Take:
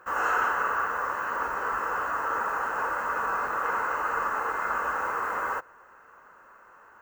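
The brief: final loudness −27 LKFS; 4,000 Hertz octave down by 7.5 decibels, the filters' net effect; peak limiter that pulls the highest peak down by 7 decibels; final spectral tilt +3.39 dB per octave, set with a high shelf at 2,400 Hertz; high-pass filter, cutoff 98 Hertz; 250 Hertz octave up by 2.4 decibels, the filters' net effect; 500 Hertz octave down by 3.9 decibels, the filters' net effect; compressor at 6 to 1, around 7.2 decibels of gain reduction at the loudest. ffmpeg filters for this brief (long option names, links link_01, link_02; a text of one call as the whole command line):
ffmpeg -i in.wav -af "highpass=98,equalizer=frequency=250:width_type=o:gain=5.5,equalizer=frequency=500:width_type=o:gain=-5.5,highshelf=frequency=2400:gain=-5,equalizer=frequency=4000:width_type=o:gain=-7,acompressor=threshold=-32dB:ratio=6,volume=11dB,alimiter=limit=-19dB:level=0:latency=1" out.wav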